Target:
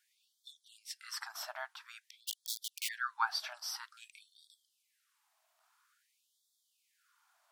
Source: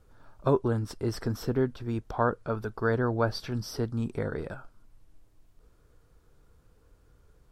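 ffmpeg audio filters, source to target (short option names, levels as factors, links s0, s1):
-filter_complex "[0:a]asplit=3[s0][s1][s2];[s0]afade=t=out:st=2.27:d=0.02[s3];[s1]aeval=exprs='(mod(25.1*val(0)+1,2)-1)/25.1':c=same,afade=t=in:st=2.27:d=0.02,afade=t=out:st=2.87:d=0.02[s4];[s2]afade=t=in:st=2.87:d=0.02[s5];[s3][s4][s5]amix=inputs=3:normalize=0,afftfilt=real='re*gte(b*sr/1024,580*pow(3300/580,0.5+0.5*sin(2*PI*0.5*pts/sr)))':imag='im*gte(b*sr/1024,580*pow(3300/580,0.5+0.5*sin(2*PI*0.5*pts/sr)))':win_size=1024:overlap=0.75,volume=1.12"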